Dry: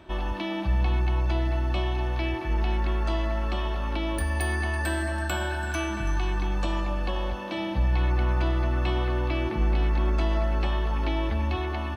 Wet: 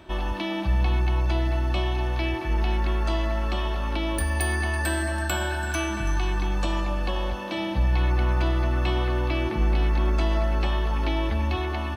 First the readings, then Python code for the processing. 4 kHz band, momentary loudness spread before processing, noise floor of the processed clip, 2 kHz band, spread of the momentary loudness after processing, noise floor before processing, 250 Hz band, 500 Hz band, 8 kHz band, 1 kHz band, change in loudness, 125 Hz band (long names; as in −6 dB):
+3.0 dB, 4 LU, −29 dBFS, +2.0 dB, 4 LU, −31 dBFS, +1.5 dB, +1.5 dB, +5.5 dB, +1.5 dB, +1.5 dB, +1.5 dB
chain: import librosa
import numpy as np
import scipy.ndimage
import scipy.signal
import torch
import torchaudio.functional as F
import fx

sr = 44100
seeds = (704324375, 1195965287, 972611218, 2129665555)

y = fx.high_shelf(x, sr, hz=4800.0, db=5.5)
y = y * 10.0 ** (1.5 / 20.0)